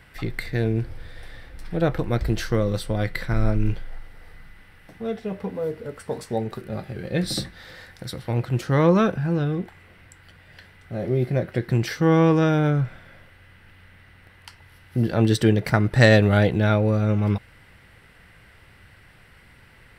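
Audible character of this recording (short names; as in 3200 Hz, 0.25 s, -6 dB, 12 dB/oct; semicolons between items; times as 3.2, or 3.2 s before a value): noise floor -52 dBFS; spectral tilt -6.5 dB/oct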